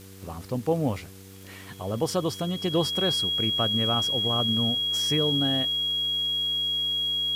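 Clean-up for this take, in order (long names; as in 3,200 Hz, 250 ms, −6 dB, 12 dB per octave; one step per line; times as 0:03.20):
click removal
hum removal 96.1 Hz, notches 5
notch filter 3,300 Hz, Q 30
broadband denoise 29 dB, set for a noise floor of −44 dBFS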